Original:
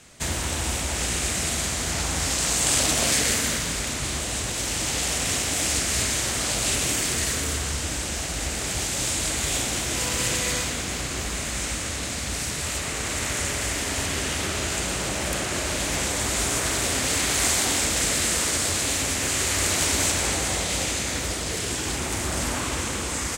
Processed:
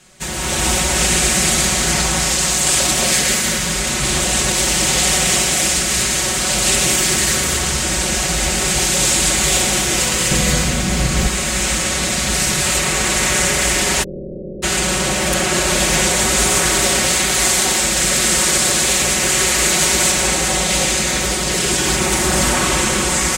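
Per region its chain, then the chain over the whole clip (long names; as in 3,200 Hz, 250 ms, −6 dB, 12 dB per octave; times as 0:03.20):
0:10.31–0:11.27: low-shelf EQ 330 Hz +10.5 dB + notch filter 370 Hz, Q 8.8
0:14.02–0:14.62: ceiling on every frequency bin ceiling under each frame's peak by 23 dB + Butterworth low-pass 560 Hz 72 dB per octave
whole clip: comb filter 5.4 ms, depth 95%; automatic gain control; level −1 dB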